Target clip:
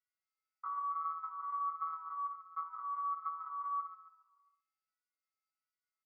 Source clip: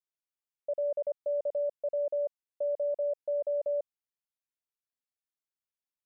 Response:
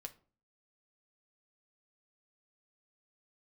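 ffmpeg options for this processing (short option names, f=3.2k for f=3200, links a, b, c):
-filter_complex "[0:a]lowshelf=f=350:g=-5.5,aecho=1:1:2.8:0.71,asplit=2[a][b];[1:a]atrim=start_sample=2205,adelay=62[c];[b][c]afir=irnorm=-1:irlink=0,volume=-2dB[d];[a][d]amix=inputs=2:normalize=0,acompressor=threshold=-38dB:ratio=5,bandreject=f=60:t=h:w=6,bandreject=f=120:t=h:w=6,bandreject=f=180:t=h:w=6,bandreject=f=240:t=h:w=6,bandreject=f=300:t=h:w=6,bandreject=f=360:t=h:w=6,bandreject=f=420:t=h:w=6,bandreject=f=480:t=h:w=6,bandreject=f=540:t=h:w=6,afftfilt=real='hypot(re,im)*cos(PI*b)':imag='0':win_size=2048:overlap=0.75,asplit=3[e][f][g];[e]bandpass=f=730:t=q:w=8,volume=0dB[h];[f]bandpass=f=1.09k:t=q:w=8,volume=-6dB[i];[g]bandpass=f=2.44k:t=q:w=8,volume=-9dB[j];[h][i][j]amix=inputs=3:normalize=0,aecho=1:1:135|270|405|540|675:0.266|0.136|0.0692|0.0353|0.018,acontrast=73,asetrate=83250,aresample=44100,atempo=0.529732,bass=f=250:g=-8,treble=f=4k:g=-1,asplit=2[k][l];[l]adelay=3.6,afreqshift=-1.4[m];[k][m]amix=inputs=2:normalize=1,volume=12.5dB"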